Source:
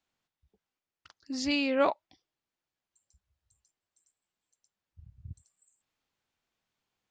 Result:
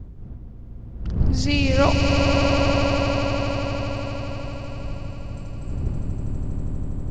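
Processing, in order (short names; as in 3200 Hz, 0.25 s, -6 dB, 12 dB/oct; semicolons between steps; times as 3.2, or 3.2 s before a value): wind noise 100 Hz -36 dBFS; swelling echo 81 ms, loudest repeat 8, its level -7 dB; gain +5.5 dB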